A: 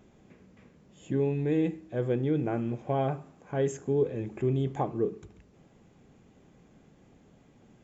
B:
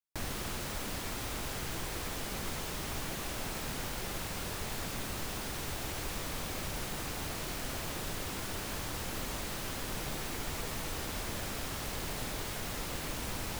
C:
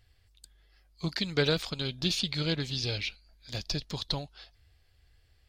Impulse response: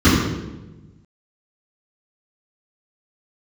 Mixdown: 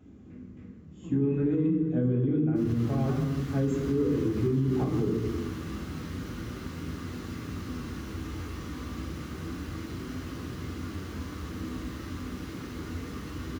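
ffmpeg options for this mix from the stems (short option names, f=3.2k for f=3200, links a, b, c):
-filter_complex "[0:a]asoftclip=type=tanh:threshold=-17.5dB,volume=-2dB,asplit=2[a][b];[b]volume=-21.5dB[c];[1:a]lowshelf=f=280:g=-6.5,adelay=2400,volume=-13dB,asplit=2[d][e];[e]volume=-11dB[f];[2:a]lowpass=f=1.4k:w=0.5412,lowpass=f=1.4k:w=1.3066,volume=-15dB,asplit=2[g][h];[h]volume=-22dB[i];[3:a]atrim=start_sample=2205[j];[c][f][i]amix=inputs=3:normalize=0[k];[k][j]afir=irnorm=-1:irlink=0[l];[a][d][g][l]amix=inputs=4:normalize=0,flanger=delay=7.2:depth=9.7:regen=76:speed=0.29:shape=sinusoidal,alimiter=limit=-18.5dB:level=0:latency=1:release=129"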